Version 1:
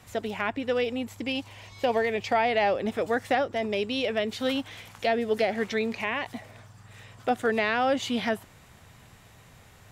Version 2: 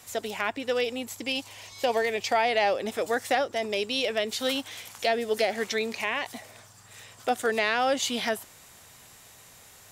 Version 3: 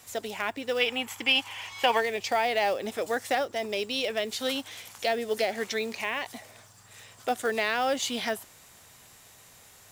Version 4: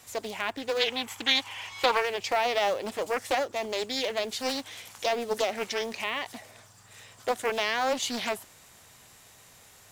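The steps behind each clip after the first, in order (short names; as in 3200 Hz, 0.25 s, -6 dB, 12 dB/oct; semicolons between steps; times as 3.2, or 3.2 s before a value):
tone controls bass -9 dB, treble +11 dB
companded quantiser 6-bit; spectral gain 0.81–2, 750–3500 Hz +10 dB; gain -2 dB
Doppler distortion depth 0.42 ms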